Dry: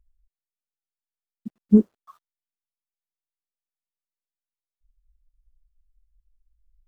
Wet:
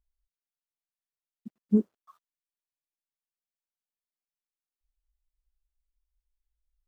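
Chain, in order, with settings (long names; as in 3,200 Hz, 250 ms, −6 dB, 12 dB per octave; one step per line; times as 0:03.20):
low-shelf EQ 68 Hz −10.5 dB
level −7 dB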